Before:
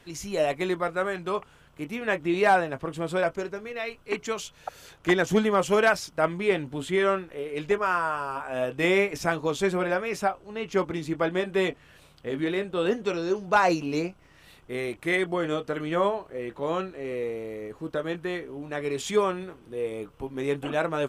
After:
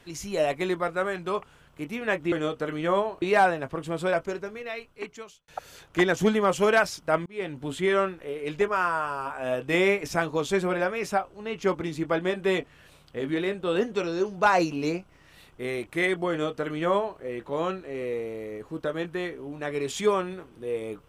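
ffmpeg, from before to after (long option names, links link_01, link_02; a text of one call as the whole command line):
ffmpeg -i in.wav -filter_complex "[0:a]asplit=5[link_01][link_02][link_03][link_04][link_05];[link_01]atrim=end=2.322[link_06];[link_02]atrim=start=15.398:end=16.302[link_07];[link_03]atrim=start=2.318:end=4.58,asetpts=PTS-STARTPTS,afade=type=out:start_time=1.262:duration=1[link_08];[link_04]atrim=start=4.58:end=6.36,asetpts=PTS-STARTPTS,afade=type=in:duration=0.004:curve=hsin,afade=type=out:start_time=1.776:duration=0.004:curve=hsin[link_09];[link_05]atrim=start=6.36,asetpts=PTS-STARTPTS,afade=type=in:duration=0.39[link_10];[link_06][link_07]acrossfade=duration=0.004:curve1=hsin:curve2=hsin[link_11];[link_08][link_09][link_10]concat=n=3:v=0:a=1[link_12];[link_11][link_12]acrossfade=duration=0.004:curve1=hsin:curve2=hsin" out.wav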